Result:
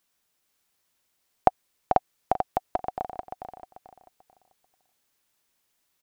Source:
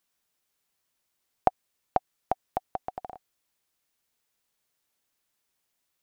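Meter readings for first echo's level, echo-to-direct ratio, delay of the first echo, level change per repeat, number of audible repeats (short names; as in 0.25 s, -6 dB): -6.0 dB, -5.5 dB, 0.44 s, -11.0 dB, 3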